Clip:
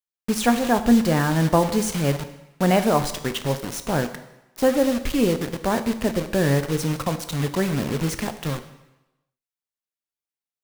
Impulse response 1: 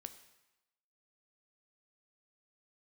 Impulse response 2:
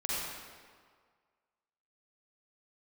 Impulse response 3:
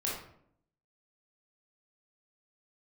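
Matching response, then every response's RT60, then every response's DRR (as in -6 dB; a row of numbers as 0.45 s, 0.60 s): 1; 1.0 s, 1.8 s, 0.65 s; 9.0 dB, -7.5 dB, -5.5 dB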